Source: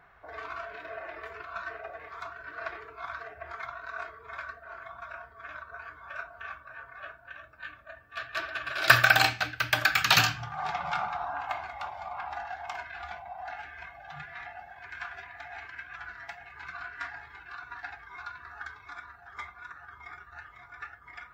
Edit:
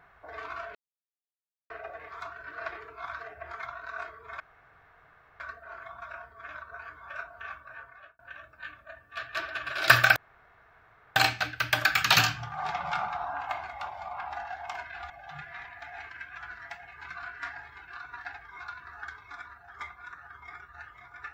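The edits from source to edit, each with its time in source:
0.75–1.70 s: mute
4.40 s: insert room tone 1.00 s
6.77–7.19 s: fade out
9.16 s: insert room tone 1.00 s
13.10–13.91 s: delete
14.46–15.23 s: delete

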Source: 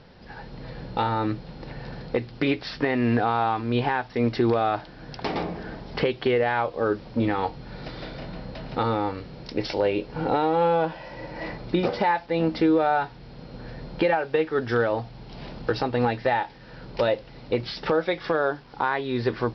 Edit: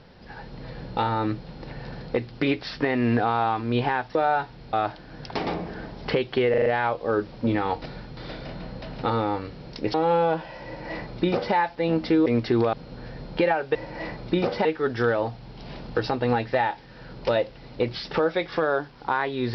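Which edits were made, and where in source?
4.15–4.62 s: swap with 12.77–13.35 s
6.39 s: stutter 0.04 s, 5 plays
7.55–7.90 s: reverse
9.67–10.45 s: delete
11.16–12.06 s: copy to 14.37 s

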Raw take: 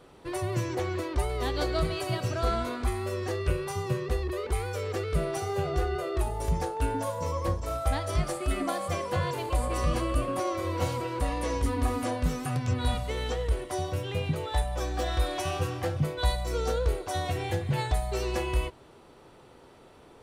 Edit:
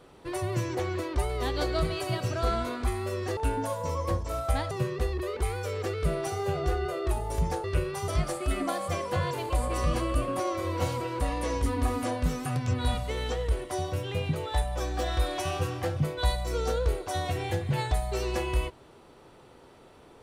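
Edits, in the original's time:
3.37–3.81 s: swap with 6.74–8.08 s

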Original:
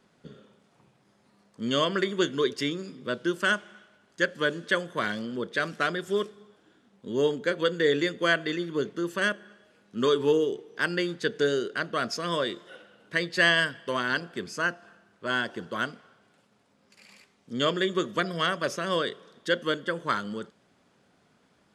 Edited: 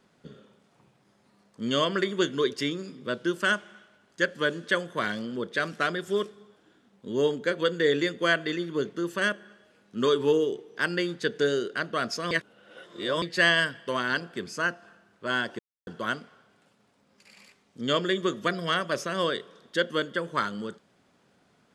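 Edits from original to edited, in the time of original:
12.31–13.22 s: reverse
15.59 s: insert silence 0.28 s

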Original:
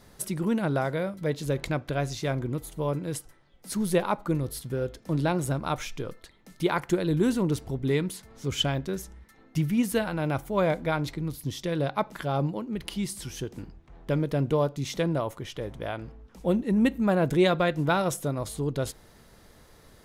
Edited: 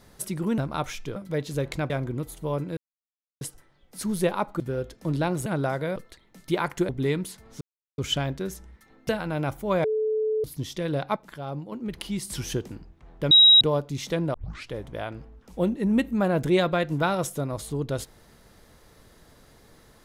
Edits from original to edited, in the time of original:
0.58–1.08 s: swap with 5.50–6.08 s
1.82–2.25 s: delete
3.12 s: insert silence 0.64 s
4.31–4.64 s: delete
7.01–7.74 s: delete
8.46 s: insert silence 0.37 s
9.57–9.96 s: delete
10.71–11.31 s: bleep 434 Hz -22 dBFS
12.03–12.59 s: gain -7 dB
13.17–13.55 s: gain +5.5 dB
14.18–14.48 s: bleep 3.83 kHz -10.5 dBFS
15.21 s: tape start 0.36 s

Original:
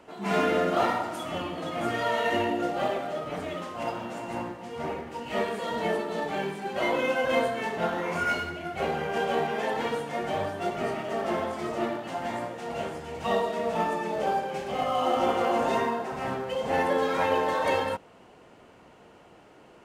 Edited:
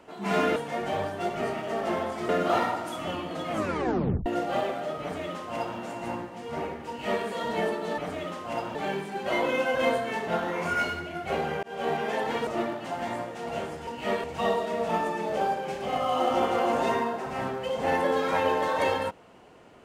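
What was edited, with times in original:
1.79 s: tape stop 0.74 s
3.28–4.05 s: copy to 6.25 s
5.15–5.52 s: copy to 13.10 s
9.13–9.43 s: fade in
9.97–11.70 s: move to 0.56 s

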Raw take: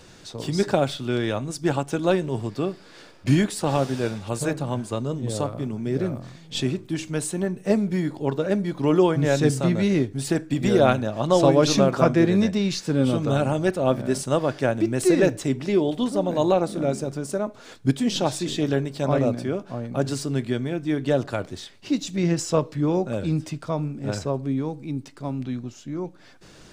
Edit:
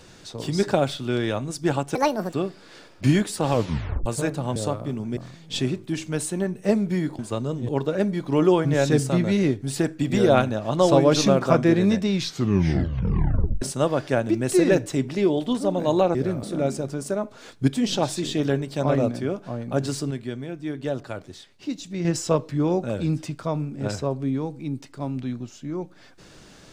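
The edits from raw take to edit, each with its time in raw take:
1.95–2.57 s: speed 160%
3.74 s: tape stop 0.55 s
4.79–5.29 s: move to 8.20 s
5.90–6.18 s: move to 16.66 s
12.63 s: tape stop 1.50 s
20.34–22.28 s: gain -6 dB

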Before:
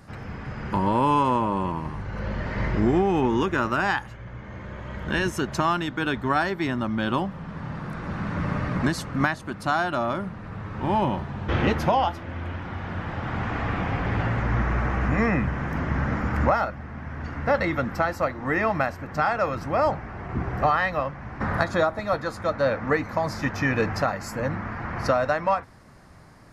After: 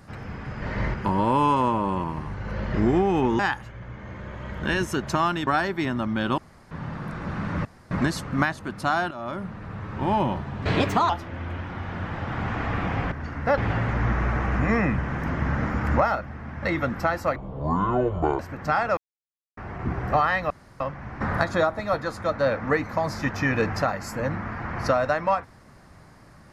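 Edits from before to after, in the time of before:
2.42–2.74 s: move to 0.62 s
3.39–3.84 s: delete
5.92–6.29 s: delete
7.20–7.53 s: room tone
8.47–8.73 s: room tone
9.93–10.31 s: fade in, from -16 dB
11.44–12.05 s: speed 128%
17.12–17.58 s: move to 14.07 s
18.31–18.89 s: speed 56%
19.47–20.07 s: mute
21.00 s: insert room tone 0.30 s

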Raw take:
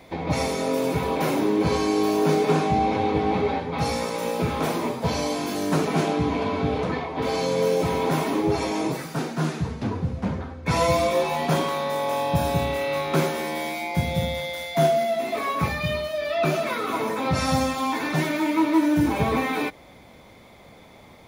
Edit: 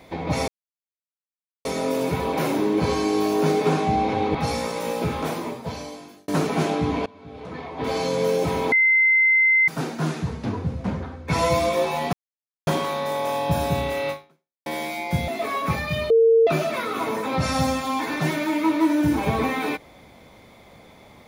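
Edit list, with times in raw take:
0.48 s: insert silence 1.17 s
3.18–3.73 s: delete
4.38–5.66 s: fade out
6.44–7.27 s: fade in quadratic, from -23 dB
8.10–9.06 s: bleep 2.07 kHz -14 dBFS
11.51 s: insert silence 0.54 s
12.94–13.50 s: fade out exponential
14.12–15.21 s: delete
16.03–16.40 s: bleep 455 Hz -12 dBFS

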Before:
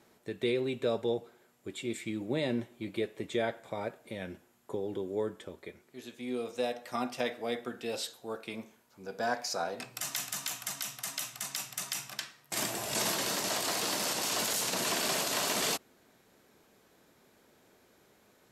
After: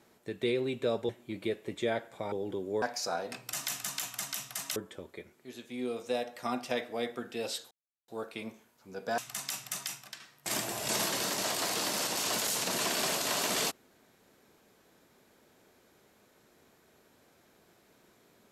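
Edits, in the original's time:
1.09–2.61 s: delete
3.84–4.75 s: delete
8.20 s: insert silence 0.37 s
9.30–11.24 s: move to 5.25 s
11.86–12.26 s: fade out quadratic, to -8 dB

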